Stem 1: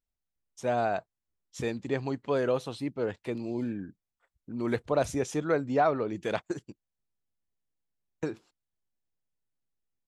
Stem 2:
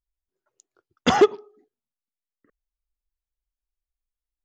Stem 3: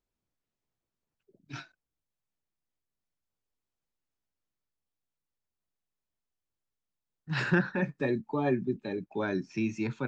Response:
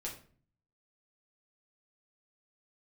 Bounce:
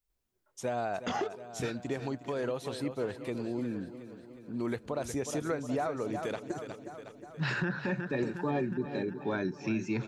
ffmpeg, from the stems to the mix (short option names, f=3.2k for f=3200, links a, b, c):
-filter_complex "[0:a]highshelf=f=9.1k:g=8.5,volume=-0.5dB,asplit=2[a][b];[b]volume=-14.5dB[c];[1:a]flanger=delay=18.5:depth=5:speed=2.9,volume=2.5dB[d];[2:a]adelay=100,volume=0.5dB,asplit=2[e][f];[f]volume=-13.5dB[g];[a][d]amix=inputs=2:normalize=0,acompressor=threshold=-29dB:ratio=6,volume=0dB[h];[c][g]amix=inputs=2:normalize=0,aecho=0:1:362|724|1086|1448|1810|2172|2534|2896|3258|3620:1|0.6|0.36|0.216|0.13|0.0778|0.0467|0.028|0.0168|0.0101[i];[e][h][i]amix=inputs=3:normalize=0,alimiter=limit=-22.5dB:level=0:latency=1:release=93"